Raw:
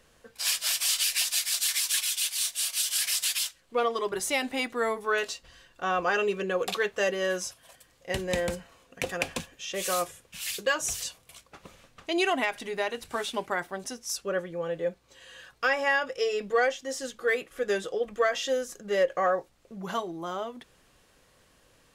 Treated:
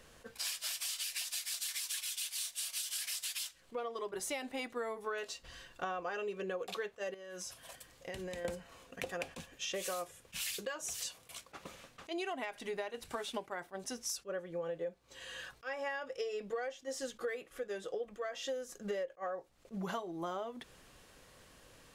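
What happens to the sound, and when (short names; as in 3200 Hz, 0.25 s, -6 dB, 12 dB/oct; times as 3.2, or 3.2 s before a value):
7.14–8.45 compressor 12:1, threshold -41 dBFS
10.78–12.22 low shelf 100 Hz -10.5 dB
whole clip: dynamic EQ 580 Hz, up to +4 dB, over -37 dBFS, Q 0.77; compressor 12:1, threshold -38 dBFS; attack slew limiter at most 430 dB/s; gain +2 dB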